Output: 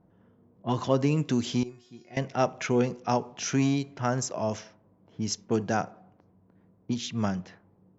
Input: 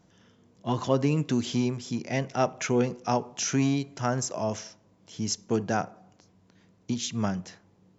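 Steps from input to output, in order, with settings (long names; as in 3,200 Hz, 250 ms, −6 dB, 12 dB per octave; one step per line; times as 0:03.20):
low-pass that shuts in the quiet parts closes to 950 Hz, open at −22.5 dBFS
0:01.63–0:02.17: tuned comb filter 360 Hz, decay 0.36 s, harmonics all, mix 90%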